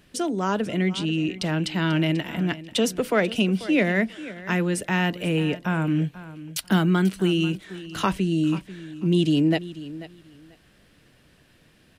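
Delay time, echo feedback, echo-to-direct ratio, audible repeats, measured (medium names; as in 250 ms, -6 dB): 489 ms, 19%, -16.0 dB, 2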